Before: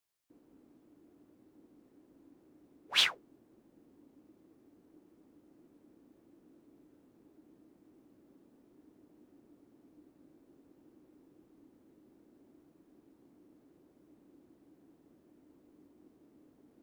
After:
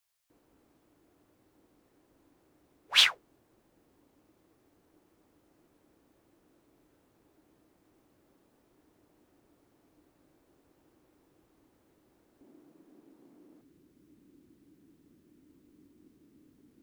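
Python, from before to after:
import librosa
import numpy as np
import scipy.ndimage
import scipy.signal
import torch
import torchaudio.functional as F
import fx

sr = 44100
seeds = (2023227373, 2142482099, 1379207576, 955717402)

y = fx.peak_eq(x, sr, hz=fx.steps((0.0, 260.0), (12.41, 62.0), (13.61, 680.0)), db=-13.5, octaves=1.7)
y = y * librosa.db_to_amplitude(5.5)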